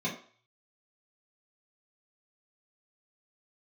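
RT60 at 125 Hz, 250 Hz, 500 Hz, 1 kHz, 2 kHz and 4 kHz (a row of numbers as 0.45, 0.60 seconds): 0.60, 0.35, 0.45, 0.50, 0.50, 0.45 seconds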